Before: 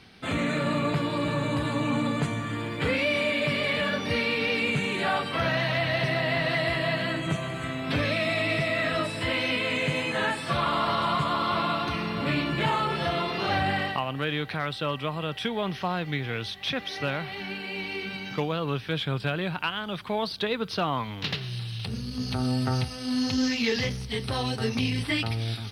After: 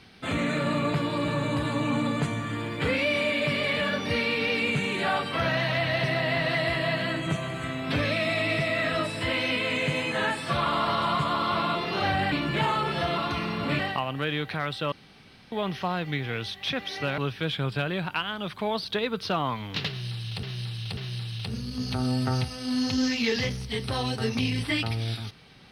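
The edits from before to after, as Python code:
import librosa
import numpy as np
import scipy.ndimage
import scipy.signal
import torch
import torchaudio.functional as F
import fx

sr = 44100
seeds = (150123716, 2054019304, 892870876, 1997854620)

y = fx.edit(x, sr, fx.swap(start_s=11.75, length_s=0.61, other_s=13.22, other_length_s=0.57),
    fx.room_tone_fill(start_s=14.92, length_s=0.6),
    fx.cut(start_s=17.18, length_s=1.48),
    fx.repeat(start_s=21.37, length_s=0.54, count=3), tone=tone)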